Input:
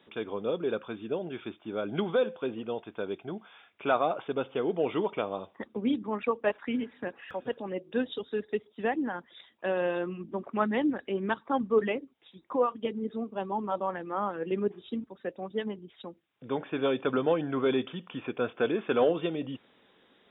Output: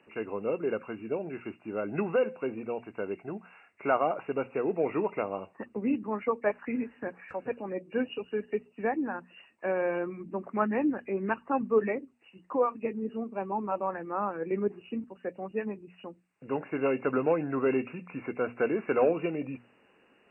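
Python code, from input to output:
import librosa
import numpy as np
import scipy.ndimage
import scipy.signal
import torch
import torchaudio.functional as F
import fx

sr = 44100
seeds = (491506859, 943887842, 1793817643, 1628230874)

y = fx.freq_compress(x, sr, knee_hz=1700.0, ratio=1.5)
y = fx.hum_notches(y, sr, base_hz=60, count=4)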